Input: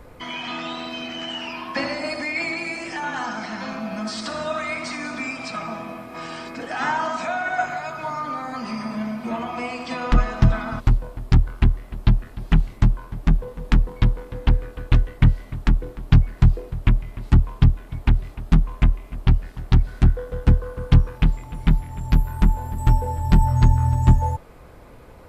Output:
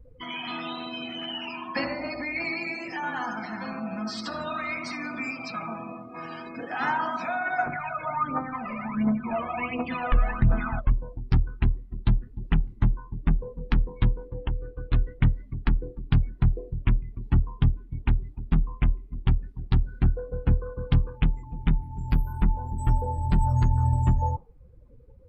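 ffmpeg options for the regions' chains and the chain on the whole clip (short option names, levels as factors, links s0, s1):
-filter_complex "[0:a]asettb=1/sr,asplit=3[s0][s1][s2];[s0]atrim=end=1.854[s3];[s1]atrim=start=1.85:end=2.45,asetpts=PTS-STARTPTS,afade=t=in:d=0.004:c=qsin,afade=t=out:st=0.596:d=0.004:c=qsin,lowpass=f=2800:p=1,aeval=exprs='val(0)+0.00398*(sin(2*PI*60*n/s)+sin(2*PI*2*60*n/s)/2+sin(2*PI*3*60*n/s)/3+sin(2*PI*4*60*n/s)/4+sin(2*PI*5*60*n/s)/5)':c=same[s4];[s2]atrim=start=2.446[s5];[s3][s4]acrossfade=d=0.004:c1=hsin:c2=qsin[s6];[s6][s5]acrossfade=d=0.004:c1=qsin:c2=hsin,asettb=1/sr,asplit=3[s7][s8][s9];[s7]atrim=end=7.664[s10];[s8]atrim=start=7.66:end=10.92,asetpts=PTS-STARTPTS,afade=t=in:d=0.004:c=qsin,afade=t=out:st=3.256:d=0.004:c=qsin,lowpass=f=3400:w=0.5412,lowpass=f=3400:w=1.3066,aphaser=in_gain=1:out_gain=1:delay=1.9:decay=0.68:speed=1.4:type=triangular[s11];[s9]atrim=start=10.916[s12];[s10][s11]acrossfade=d=0.004:c1=hsin:c2=qsin[s13];[s13][s12]acrossfade=d=0.004:c1=qsin:c2=hsin,asettb=1/sr,asplit=3[s14][s15][s16];[s14]atrim=end=14.284[s17];[s15]atrim=start=14.28:end=14.93,asetpts=PTS-STARTPTS,afade=t=in:d=0.004:c=qsin,afade=t=out:st=0.646:d=0.004:c=qsin,aemphasis=mode=reproduction:type=cd,bandreject=f=240:w=6.1,acompressor=threshold=0.0794:ratio=3:attack=3.2:release=140:knee=1:detection=peak[s18];[s16]atrim=start=14.926[s19];[s17][s18]acrossfade=d=0.004:c1=hsin:c2=qsin[s20];[s20][s19]acrossfade=d=0.004:c1=qsin:c2=hsin,bandreject=f=630:w=16,afftdn=nr=27:nf=-36,alimiter=limit=0.355:level=0:latency=1:release=92,volume=0.708"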